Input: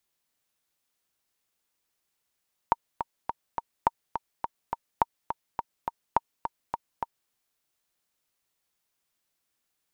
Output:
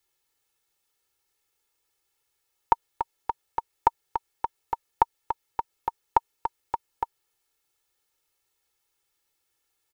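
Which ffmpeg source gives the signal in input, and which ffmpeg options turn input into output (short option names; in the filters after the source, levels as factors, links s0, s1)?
-f lavfi -i "aevalsrc='pow(10,(-7-8.5*gte(mod(t,4*60/209),60/209))/20)*sin(2*PI*928*mod(t,60/209))*exp(-6.91*mod(t,60/209)/0.03)':d=4.59:s=44100"
-af "aecho=1:1:2.3:1"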